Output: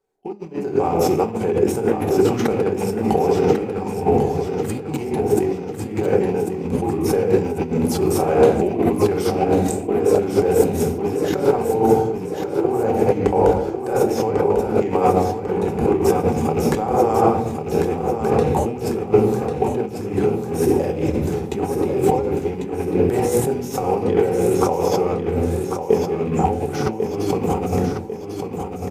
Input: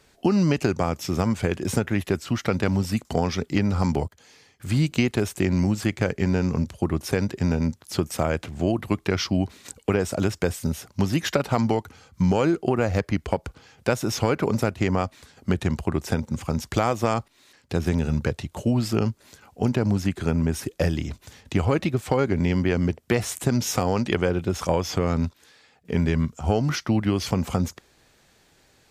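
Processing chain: rattling part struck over -24 dBFS, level -23 dBFS; tone controls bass +1 dB, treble +7 dB; notch 1800 Hz, Q 24; shoebox room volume 280 m³, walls mixed, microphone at 1.1 m; negative-ratio compressor -26 dBFS, ratio -1; expander -24 dBFS; bell 4600 Hz -7.5 dB 1.7 oct; small resonant body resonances 440/780 Hz, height 18 dB, ringing for 25 ms; on a send: feedback echo 1.096 s, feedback 46%, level -7 dB; on the sum: gain -1.5 dB

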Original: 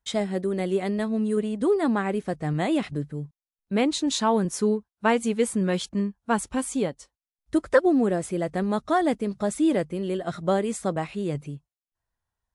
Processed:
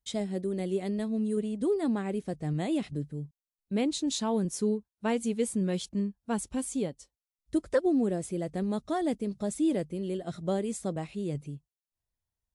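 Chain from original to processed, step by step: bell 1300 Hz -10 dB 2 oct; gain -3.5 dB

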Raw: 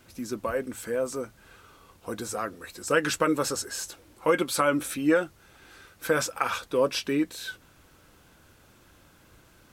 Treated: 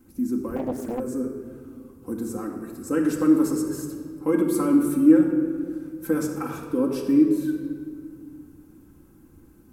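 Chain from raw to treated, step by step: EQ curve 110 Hz 0 dB, 340 Hz +7 dB, 590 Hz -13 dB, 840 Hz -7 dB, 3500 Hz -19 dB, 12000 Hz -1 dB; shoebox room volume 3400 m³, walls mixed, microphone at 2.1 m; 0.56–1 Doppler distortion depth 0.95 ms

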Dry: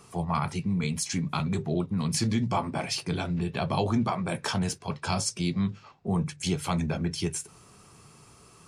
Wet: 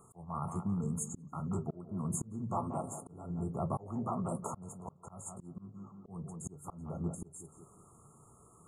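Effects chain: brick-wall FIR band-stop 1400–6500 Hz; tape echo 0.179 s, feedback 42%, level -9 dB, low-pass 1500 Hz; auto swell 0.411 s; gain -6 dB

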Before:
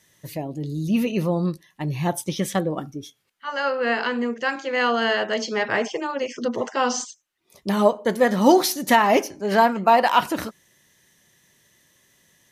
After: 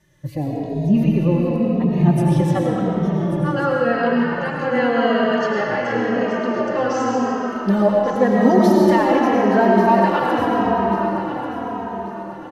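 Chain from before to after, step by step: bell 1400 Hz +2.5 dB; reverb RT60 4.6 s, pre-delay 60 ms, DRR -3.5 dB; in parallel at +1.5 dB: compressor, threshold -21 dBFS, peak gain reduction 12.5 dB; on the sum: tilt -3 dB/oct; on a send: feedback echo 1.139 s, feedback 34%, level -12.5 dB; on the sum: endless flanger 2.9 ms -0.9 Hz; gain -4.5 dB

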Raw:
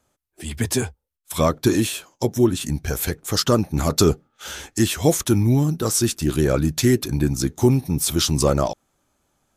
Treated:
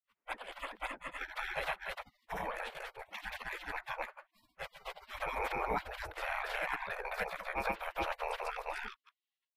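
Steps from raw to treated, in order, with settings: limiter -10.5 dBFS, peak gain reduction 6.5 dB; band shelf 4900 Hz -9.5 dB; grains 0.136 s, grains 19/s, spray 0.359 s, pitch spread up and down by 0 st; spectral gate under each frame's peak -30 dB weak; air absorption 490 m; gain +14.5 dB

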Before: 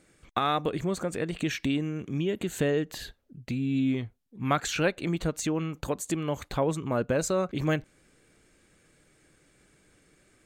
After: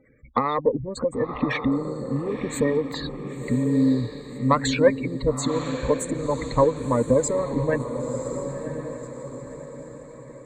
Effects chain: bell 10000 Hz -7 dB 2.2 oct; spectral gate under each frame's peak -15 dB strong; added harmonics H 4 -25 dB, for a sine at -12.5 dBFS; ripple EQ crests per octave 1, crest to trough 16 dB; diffused feedback echo 1.031 s, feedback 43%, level -6.5 dB; harmonic-percussive split percussive +7 dB

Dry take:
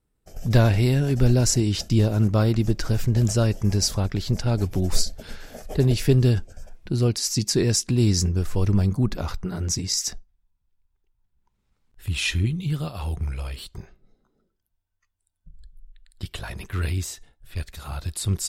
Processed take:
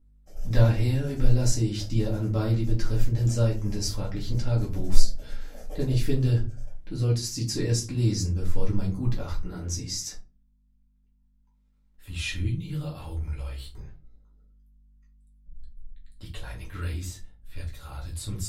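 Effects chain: hum 50 Hz, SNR 32 dB; 10.02–12.1 low shelf 140 Hz -9.5 dB; shoebox room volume 120 m³, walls furnished, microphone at 2.2 m; gain -12 dB

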